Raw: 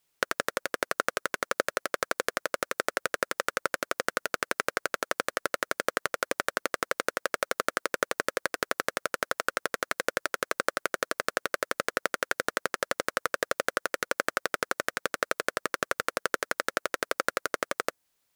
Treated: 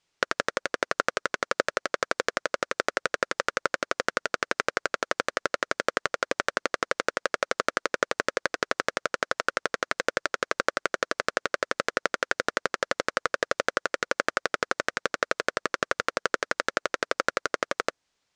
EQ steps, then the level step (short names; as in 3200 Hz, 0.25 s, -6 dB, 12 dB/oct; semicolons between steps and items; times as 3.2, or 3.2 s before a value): LPF 6900 Hz 24 dB/oct; +2.5 dB